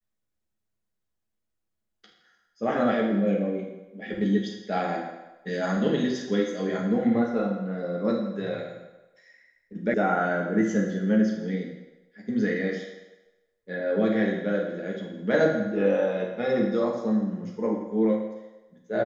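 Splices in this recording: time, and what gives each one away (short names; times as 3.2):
9.94 sound cut off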